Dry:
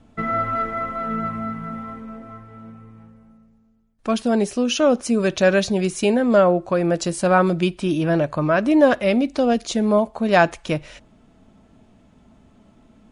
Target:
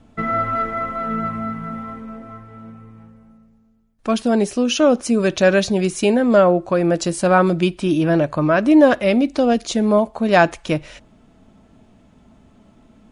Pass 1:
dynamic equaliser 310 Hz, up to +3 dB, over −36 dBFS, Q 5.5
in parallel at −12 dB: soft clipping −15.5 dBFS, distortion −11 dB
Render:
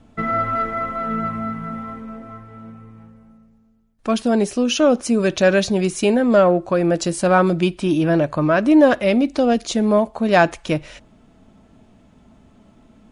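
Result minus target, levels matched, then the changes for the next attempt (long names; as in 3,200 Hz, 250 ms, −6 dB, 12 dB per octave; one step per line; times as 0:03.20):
soft clipping: distortion +16 dB
change: soft clipping −3.5 dBFS, distortion −27 dB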